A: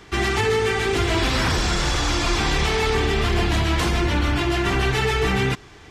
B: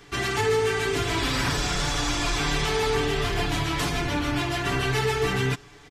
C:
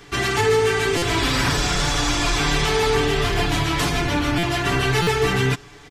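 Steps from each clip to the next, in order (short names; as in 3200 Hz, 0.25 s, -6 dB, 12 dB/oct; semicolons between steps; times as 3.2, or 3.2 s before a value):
high shelf 7800 Hz +6 dB; comb 7 ms; gain -5.5 dB
stuck buffer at 0.97/4.38/5.02, samples 256, times 8; gain +5 dB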